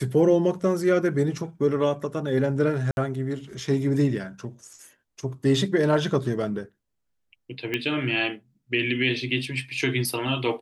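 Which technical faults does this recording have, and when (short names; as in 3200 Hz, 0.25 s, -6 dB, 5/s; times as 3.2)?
2.91–2.97 gap 61 ms
7.74 pop -13 dBFS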